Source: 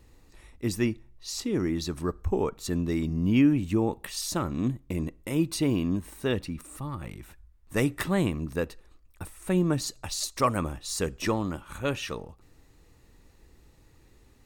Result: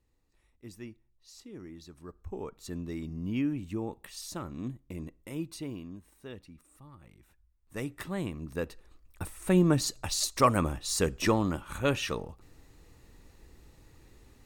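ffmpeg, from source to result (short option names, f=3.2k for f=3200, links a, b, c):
-af "volume=9dB,afade=t=in:st=2:d=0.69:silence=0.375837,afade=t=out:st=5.28:d=0.64:silence=0.421697,afade=t=in:st=7.1:d=1.29:silence=0.354813,afade=t=in:st=8.39:d=0.84:silence=0.334965"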